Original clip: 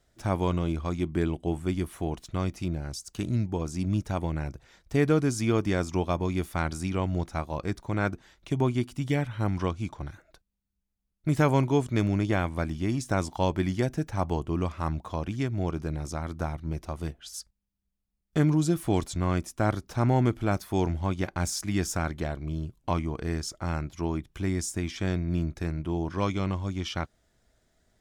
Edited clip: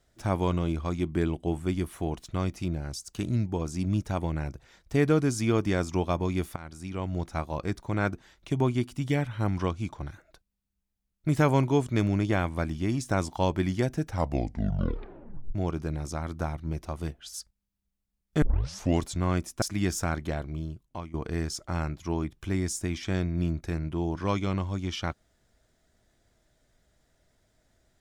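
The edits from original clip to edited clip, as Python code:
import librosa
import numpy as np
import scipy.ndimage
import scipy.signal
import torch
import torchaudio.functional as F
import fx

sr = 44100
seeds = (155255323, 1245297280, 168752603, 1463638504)

y = fx.edit(x, sr, fx.fade_in_from(start_s=6.56, length_s=0.83, floor_db=-19.0),
    fx.tape_stop(start_s=14.06, length_s=1.49),
    fx.tape_start(start_s=18.42, length_s=0.59),
    fx.cut(start_s=19.62, length_s=1.93),
    fx.fade_out_to(start_s=22.36, length_s=0.71, floor_db=-17.5), tone=tone)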